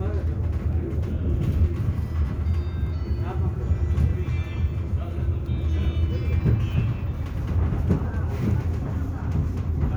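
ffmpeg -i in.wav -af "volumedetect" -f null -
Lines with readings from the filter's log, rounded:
mean_volume: -23.7 dB
max_volume: -8.1 dB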